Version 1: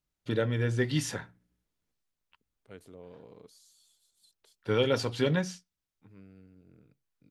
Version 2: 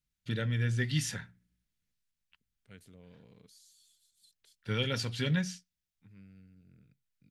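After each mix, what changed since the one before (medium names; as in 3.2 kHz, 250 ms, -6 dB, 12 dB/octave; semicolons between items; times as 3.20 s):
master: add high-order bell 590 Hz -11 dB 2.4 oct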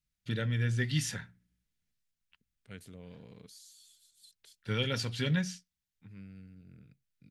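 second voice +6.0 dB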